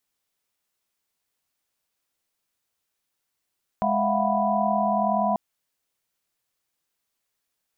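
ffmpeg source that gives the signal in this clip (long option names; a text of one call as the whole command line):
ffmpeg -f lavfi -i "aevalsrc='0.0473*(sin(2*PI*207.65*t)+sin(2*PI*659.26*t)+sin(2*PI*698.46*t)+sin(2*PI*739.99*t)+sin(2*PI*987.77*t))':duration=1.54:sample_rate=44100" out.wav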